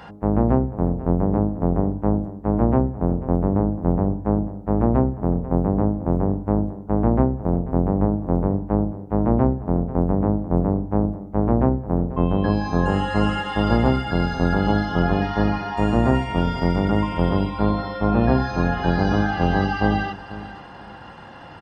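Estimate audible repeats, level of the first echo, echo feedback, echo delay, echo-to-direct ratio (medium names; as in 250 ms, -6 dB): 2, -15.5 dB, 24%, 491 ms, -15.5 dB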